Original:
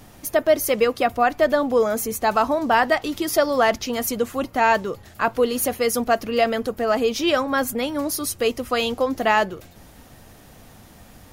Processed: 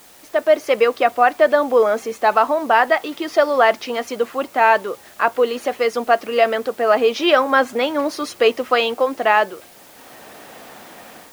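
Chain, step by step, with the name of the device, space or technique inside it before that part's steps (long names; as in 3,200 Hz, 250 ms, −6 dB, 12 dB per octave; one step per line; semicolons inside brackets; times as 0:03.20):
dictaphone (band-pass filter 390–3,200 Hz; automatic gain control gain up to 13 dB; tape wow and flutter 24 cents; white noise bed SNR 29 dB)
level −1 dB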